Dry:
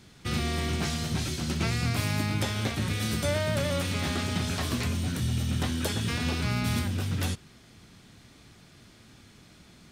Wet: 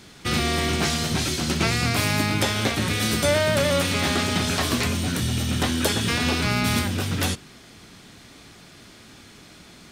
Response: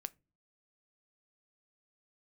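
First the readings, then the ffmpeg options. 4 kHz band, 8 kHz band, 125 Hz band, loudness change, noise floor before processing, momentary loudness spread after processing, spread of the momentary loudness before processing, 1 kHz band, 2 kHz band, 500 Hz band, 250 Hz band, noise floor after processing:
+9.0 dB, +9.0 dB, +2.5 dB, +6.5 dB, −55 dBFS, 4 LU, 3 LU, +9.0 dB, +9.0 dB, +8.5 dB, +6.0 dB, −48 dBFS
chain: -filter_complex "[0:a]asplit=2[link_01][link_02];[link_02]highpass=190[link_03];[1:a]atrim=start_sample=2205[link_04];[link_03][link_04]afir=irnorm=-1:irlink=0,volume=2dB[link_05];[link_01][link_05]amix=inputs=2:normalize=0,volume=3.5dB"

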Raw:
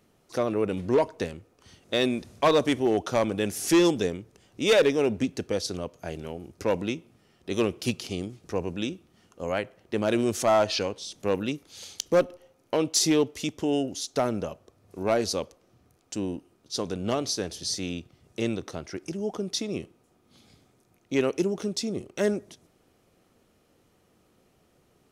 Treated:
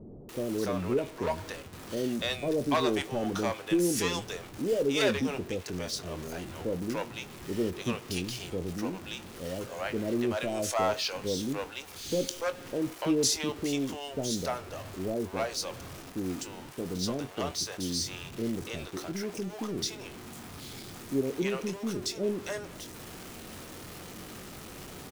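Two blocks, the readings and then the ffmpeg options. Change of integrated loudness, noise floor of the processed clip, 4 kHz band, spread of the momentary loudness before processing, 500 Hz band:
−4.5 dB, −46 dBFS, −2.5 dB, 14 LU, −5.5 dB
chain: -filter_complex "[0:a]aeval=exprs='val(0)+0.5*0.02*sgn(val(0))':channel_layout=same,asplit=2[link_01][link_02];[link_02]adelay=22,volume=-11dB[link_03];[link_01][link_03]amix=inputs=2:normalize=0,acrossover=split=560[link_04][link_05];[link_05]adelay=290[link_06];[link_04][link_06]amix=inputs=2:normalize=0,volume=-4.5dB"

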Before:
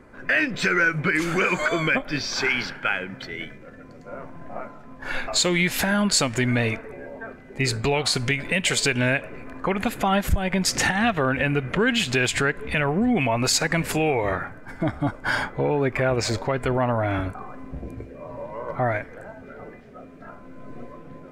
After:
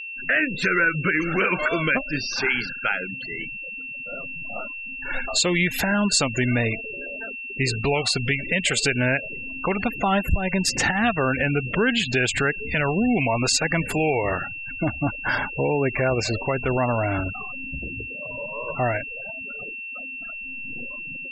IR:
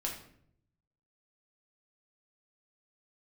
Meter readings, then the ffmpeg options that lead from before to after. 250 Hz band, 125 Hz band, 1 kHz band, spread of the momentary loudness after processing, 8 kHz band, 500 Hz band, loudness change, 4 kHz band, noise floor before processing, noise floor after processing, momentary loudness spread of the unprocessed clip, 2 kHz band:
0.0 dB, 0.0 dB, −0.5 dB, 11 LU, −1.0 dB, 0.0 dB, −1.0 dB, −0.5 dB, −44 dBFS, −35 dBFS, 18 LU, +1.0 dB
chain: -af "afftfilt=real='re*gte(hypot(re,im),0.0447)':imag='im*gte(hypot(re,im),0.0447)':win_size=1024:overlap=0.75,aeval=exprs='val(0)+0.0251*sin(2*PI*2700*n/s)':channel_layout=same"

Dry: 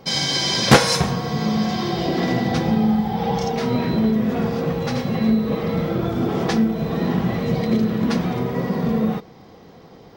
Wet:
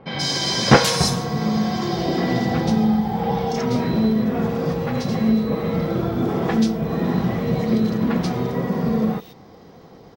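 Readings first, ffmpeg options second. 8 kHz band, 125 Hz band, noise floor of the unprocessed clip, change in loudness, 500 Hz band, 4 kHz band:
can't be measured, 0.0 dB, −45 dBFS, 0.0 dB, 0.0 dB, −1.5 dB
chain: -filter_complex "[0:a]acrossover=split=2900[link_01][link_02];[link_02]adelay=130[link_03];[link_01][link_03]amix=inputs=2:normalize=0"

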